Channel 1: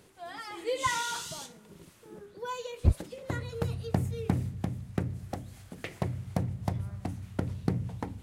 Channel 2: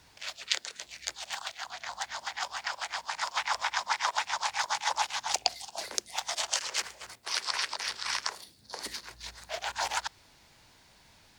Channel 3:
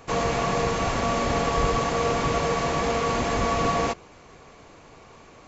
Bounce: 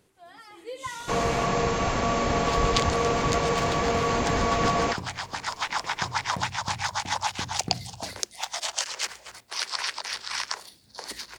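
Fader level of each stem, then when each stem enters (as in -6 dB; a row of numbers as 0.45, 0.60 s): -6.5, +1.5, -0.5 dB; 0.00, 2.25, 1.00 s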